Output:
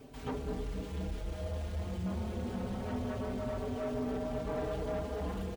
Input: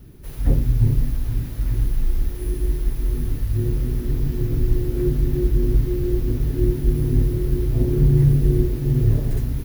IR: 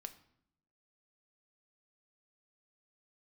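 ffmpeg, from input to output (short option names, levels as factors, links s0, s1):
-filter_complex "[0:a]areverse,acompressor=mode=upward:threshold=0.0224:ratio=2.5,areverse,equalizer=f=350:w=2.5:g=-7,acrossover=split=5800[s0][s1];[s1]acompressor=threshold=0.00447:ratio=4:attack=1:release=60[s2];[s0][s2]amix=inputs=2:normalize=0,asetrate=76440,aresample=44100,bass=f=250:g=-14,treble=f=4000:g=-5,afftfilt=real='re*lt(hypot(re,im),0.398)':imag='im*lt(hypot(re,im),0.398)':win_size=1024:overlap=0.75,asoftclip=type=tanh:threshold=0.0266,asplit=2[s3][s4];[s4]adelay=4.7,afreqshift=0.25[s5];[s3][s5]amix=inputs=2:normalize=1,volume=1.26"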